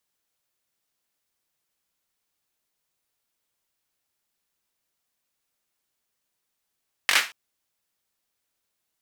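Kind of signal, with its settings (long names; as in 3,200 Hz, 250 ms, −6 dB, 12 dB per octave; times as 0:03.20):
synth clap length 0.23 s, apart 21 ms, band 2,000 Hz, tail 0.29 s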